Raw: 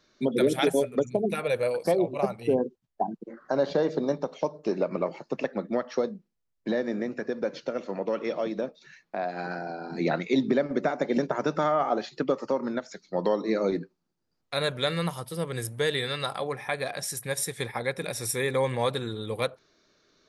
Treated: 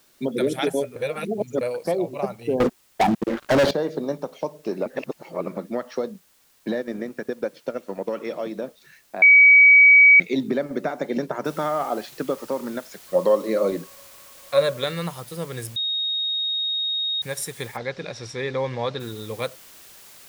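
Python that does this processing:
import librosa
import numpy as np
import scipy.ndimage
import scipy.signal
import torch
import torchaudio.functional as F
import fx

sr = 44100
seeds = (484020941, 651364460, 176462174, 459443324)

y = fx.leveller(x, sr, passes=5, at=(2.6, 3.71))
y = fx.transient(y, sr, attack_db=3, sustain_db=-9, at=(6.13, 8.1))
y = fx.noise_floor_step(y, sr, seeds[0], at_s=11.45, before_db=-60, after_db=-47, tilt_db=0.0)
y = fx.small_body(y, sr, hz=(560.0, 1100.0), ring_ms=90, db=17, at=(13.06, 14.84))
y = fx.cheby1_lowpass(y, sr, hz=5200.0, order=3, at=(17.76, 18.99), fade=0.02)
y = fx.edit(y, sr, fx.reverse_span(start_s=0.96, length_s=0.65),
    fx.reverse_span(start_s=4.86, length_s=0.71),
    fx.bleep(start_s=9.22, length_s=0.98, hz=2270.0, db=-8.0),
    fx.bleep(start_s=15.76, length_s=1.46, hz=3740.0, db=-22.0), tone=tone)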